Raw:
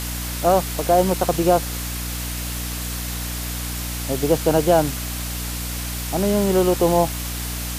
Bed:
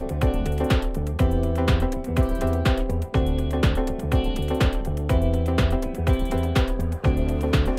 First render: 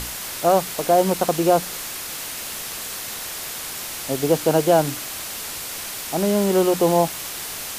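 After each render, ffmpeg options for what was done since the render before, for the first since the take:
ffmpeg -i in.wav -af "bandreject=frequency=60:width_type=h:width=6,bandreject=frequency=120:width_type=h:width=6,bandreject=frequency=180:width_type=h:width=6,bandreject=frequency=240:width_type=h:width=6,bandreject=frequency=300:width_type=h:width=6" out.wav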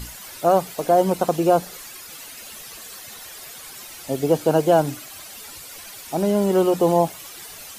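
ffmpeg -i in.wav -af "afftdn=noise_reduction=12:noise_floor=-32" out.wav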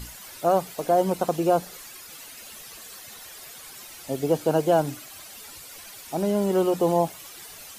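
ffmpeg -i in.wav -af "volume=-4dB" out.wav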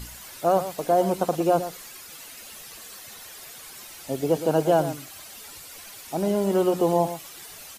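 ffmpeg -i in.wav -af "aecho=1:1:115:0.251" out.wav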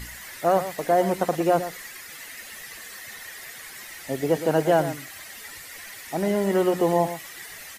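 ffmpeg -i in.wav -af "equalizer=frequency=1900:width_type=o:width=0.4:gain=14.5" out.wav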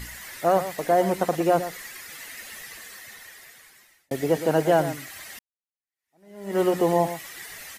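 ffmpeg -i in.wav -filter_complex "[0:a]asplit=3[link_01][link_02][link_03];[link_01]atrim=end=4.11,asetpts=PTS-STARTPTS,afade=type=out:start_time=2.54:duration=1.57[link_04];[link_02]atrim=start=4.11:end=5.39,asetpts=PTS-STARTPTS,afade=type=in:duration=0.004:curve=hsin,afade=type=out:start_time=1.276:duration=0.004:curve=hsin[link_05];[link_03]atrim=start=5.39,asetpts=PTS-STARTPTS,afade=type=in:duration=1.21:curve=exp[link_06];[link_04][link_05][link_06]concat=n=3:v=0:a=1" out.wav

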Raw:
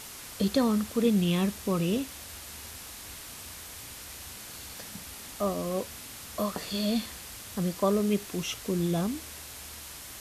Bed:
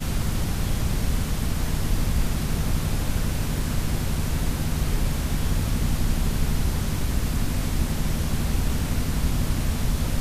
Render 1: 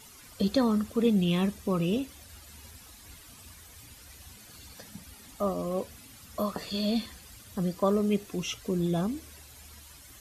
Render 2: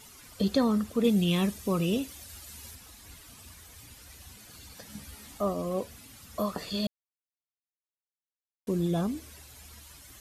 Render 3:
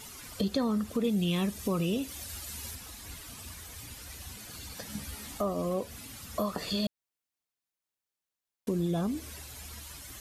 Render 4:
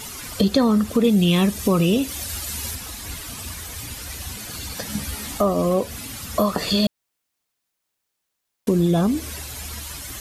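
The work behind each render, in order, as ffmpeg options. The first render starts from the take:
ffmpeg -i in.wav -af "afftdn=noise_reduction=12:noise_floor=-44" out.wav
ffmpeg -i in.wav -filter_complex "[0:a]asettb=1/sr,asplit=3[link_01][link_02][link_03];[link_01]atrim=end=1.044[link_04];[link_02]atrim=start=1.04:end=2.75,asetpts=PTS-STARTPTS,afade=type=in:duration=0.004:curve=qsin,afade=type=out:start_time=1.706:duration=0.004:curve=qsin,highshelf=frequency=3800:gain=6.5[link_05];[link_03]atrim=start=2.746[link_06];[link_04][link_05]acrossfade=duration=0.004:curve1=hsin:curve2=qsin[link_07];[link_07][link_06]acrossfade=duration=0.004:curve1=qsin:curve2=hsin,asettb=1/sr,asplit=3[link_08][link_09][link_10];[link_08]atrim=end=4.884[link_11];[link_09]atrim=start=4.88:end=5.38,asetpts=PTS-STARTPTS,afade=type=in:duration=0.004:curve=qsin,afade=type=out:start_time=0.496:duration=0.004:curve=qsin,asplit=2[link_12][link_13];[link_13]adelay=14,volume=-2dB[link_14];[link_12][link_14]amix=inputs=2:normalize=0,atrim=end_sample=22050[link_15];[link_10]atrim=start=5.376[link_16];[link_11][link_15]acrossfade=duration=0.004:curve1=hsin:curve2=qsin[link_17];[link_17][link_16]acrossfade=duration=0.004:curve1=qsin:curve2=hsin,asplit=3[link_18][link_19][link_20];[link_18]atrim=end=6.87,asetpts=PTS-STARTPTS,afade=type=out:start_time=6.866:duration=0.004:curve=hsin[link_21];[link_19]atrim=start=6.87:end=8.67,asetpts=PTS-STARTPTS,volume=0[link_22];[link_20]atrim=start=8.67,asetpts=PTS-STARTPTS,afade=type=in:duration=0.004:curve=hsin[link_23];[link_21][link_22][link_23]concat=n=3:v=0:a=1" out.wav
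ffmpeg -i in.wav -filter_complex "[0:a]asplit=2[link_01][link_02];[link_02]alimiter=limit=-23dB:level=0:latency=1:release=159,volume=-2dB[link_03];[link_01][link_03]amix=inputs=2:normalize=0,acompressor=threshold=-31dB:ratio=2" out.wav
ffmpeg -i in.wav -af "volume=11.5dB" out.wav

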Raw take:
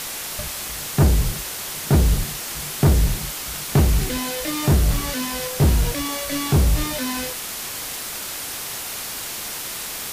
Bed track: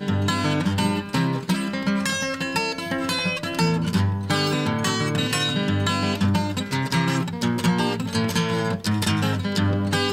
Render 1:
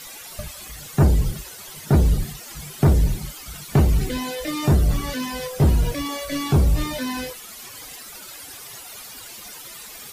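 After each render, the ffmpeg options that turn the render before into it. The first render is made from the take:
ffmpeg -i in.wav -af "afftdn=noise_reduction=14:noise_floor=-31" out.wav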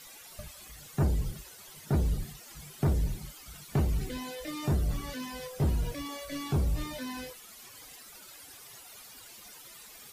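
ffmpeg -i in.wav -af "volume=-11dB" out.wav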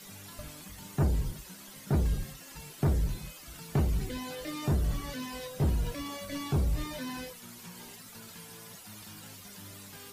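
ffmpeg -i in.wav -i bed.wav -filter_complex "[1:a]volume=-29dB[link_01];[0:a][link_01]amix=inputs=2:normalize=0" out.wav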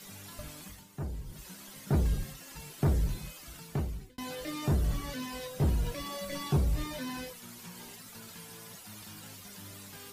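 ffmpeg -i in.wav -filter_complex "[0:a]asettb=1/sr,asplit=3[link_01][link_02][link_03];[link_01]atrim=end=5.954[link_04];[link_02]atrim=start=5.95:end=6.57,asetpts=PTS-STARTPTS,afade=type=in:duration=0.004:curve=qsin,afade=type=out:start_time=0.616:duration=0.004:curve=qsin,aecho=1:1:5.5:0.65,atrim=end_sample=27342[link_05];[link_03]atrim=start=6.566[link_06];[link_04][link_05]acrossfade=duration=0.004:curve1=hsin:curve2=qsin[link_07];[link_07][link_06]acrossfade=duration=0.004:curve1=qsin:curve2=hsin,asplit=4[link_08][link_09][link_10][link_11];[link_08]atrim=end=0.86,asetpts=PTS-STARTPTS,afade=type=out:start_time=0.68:duration=0.18:silence=0.298538[link_12];[link_09]atrim=start=0.86:end=1.27,asetpts=PTS-STARTPTS,volume=-10.5dB[link_13];[link_10]atrim=start=1.27:end=4.18,asetpts=PTS-STARTPTS,afade=type=in:duration=0.18:silence=0.298538,afade=type=out:start_time=2.19:duration=0.72[link_14];[link_11]atrim=start=4.18,asetpts=PTS-STARTPTS,afade=type=in:duration=0.004:curve=hsin[link_15];[link_12][link_13][link_14][link_15]concat=n=4:v=0:a=1" out.wav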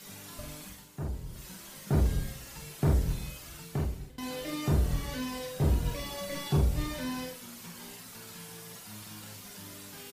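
ffmpeg -i in.wav -filter_complex "[0:a]asplit=2[link_01][link_02];[link_02]adelay=47,volume=-3.5dB[link_03];[link_01][link_03]amix=inputs=2:normalize=0,aecho=1:1:125|250|375|500:0.112|0.0606|0.0327|0.0177" out.wav

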